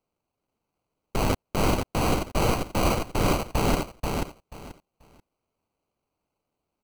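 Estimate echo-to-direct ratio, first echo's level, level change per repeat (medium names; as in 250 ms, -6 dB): -4.0 dB, -4.0 dB, -14.0 dB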